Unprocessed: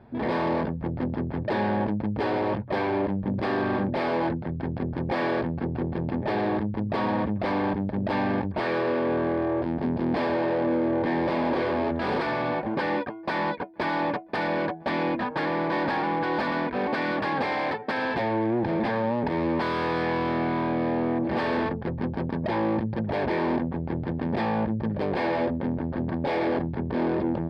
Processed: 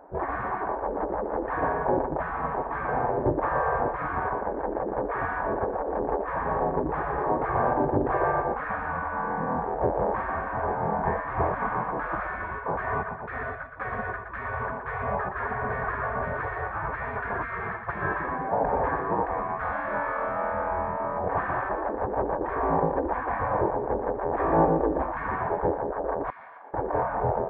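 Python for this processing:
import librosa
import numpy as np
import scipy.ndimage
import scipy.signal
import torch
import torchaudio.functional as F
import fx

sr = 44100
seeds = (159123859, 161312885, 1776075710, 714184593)

y = scipy.signal.sosfilt(scipy.signal.butter(4, 1300.0, 'lowpass', fs=sr, output='sos'), x)
y = fx.low_shelf(y, sr, hz=280.0, db=10.0)
y = fx.echo_feedback(y, sr, ms=119, feedback_pct=39, wet_db=-7.0)
y = fx.spec_gate(y, sr, threshold_db=-15, keep='weak')
y = fx.differentiator(y, sr, at=(26.3, 26.74))
y = y * 10.0 ** (8.5 / 20.0)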